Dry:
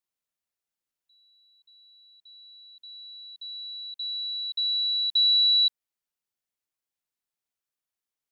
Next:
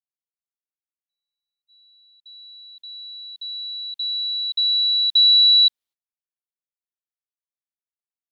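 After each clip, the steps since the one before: gate -56 dBFS, range -34 dB; bell 3700 Hz +7.5 dB 0.69 oct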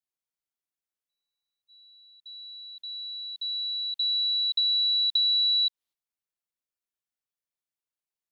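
compressor, threshold -23 dBFS, peak gain reduction 10 dB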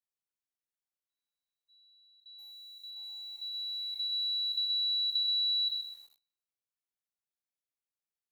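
spectral trails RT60 0.60 s; lo-fi delay 0.127 s, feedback 35%, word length 8-bit, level -7.5 dB; gain -8.5 dB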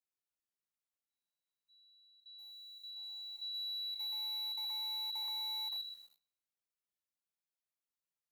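on a send at -10 dB: reverb RT60 0.40 s, pre-delay 3 ms; on the sum: slew limiter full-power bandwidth 75 Hz; gain -4.5 dB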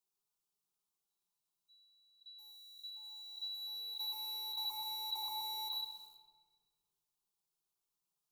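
fixed phaser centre 370 Hz, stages 8; shoebox room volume 2000 m³, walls mixed, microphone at 1.3 m; gain +5 dB

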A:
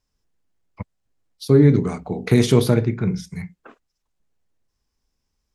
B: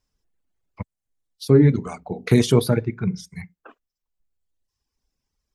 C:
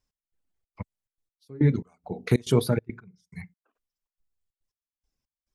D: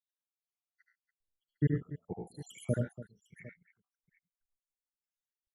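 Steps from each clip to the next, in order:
reverb removal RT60 1.4 s
step gate "x..xxx.xxx.x...x" 140 bpm -24 dB; gain -4.5 dB
random spectral dropouts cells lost 84%; on a send: tapped delay 76/94/110/134/287/754 ms -5/-6.5/-8.5/-17/-14.5/-18.5 dB; on the sum: gain -6.5 dB

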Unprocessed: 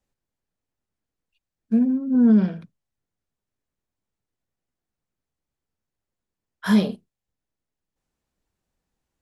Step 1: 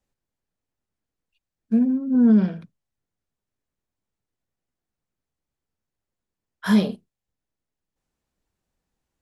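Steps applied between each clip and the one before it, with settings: nothing audible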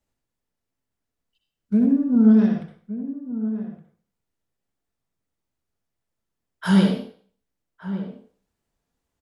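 wow and flutter 150 cents; outdoor echo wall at 200 m, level -12 dB; on a send at -3 dB: reverb RT60 0.50 s, pre-delay 59 ms

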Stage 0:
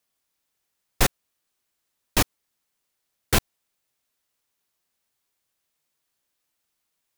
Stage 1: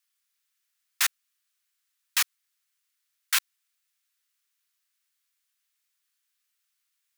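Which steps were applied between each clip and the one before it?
HPF 1300 Hz 24 dB/oct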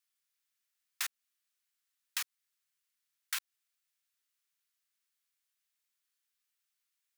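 compressor, threshold -26 dBFS, peak gain reduction 7.5 dB; gain -6.5 dB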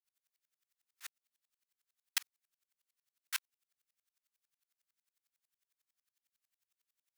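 dB-ramp tremolo swelling 11 Hz, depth 40 dB; gain +6.5 dB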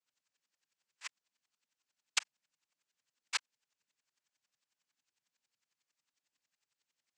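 noise vocoder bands 8; gain +4.5 dB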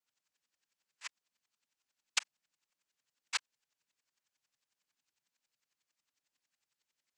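vibrato 11 Hz 38 cents

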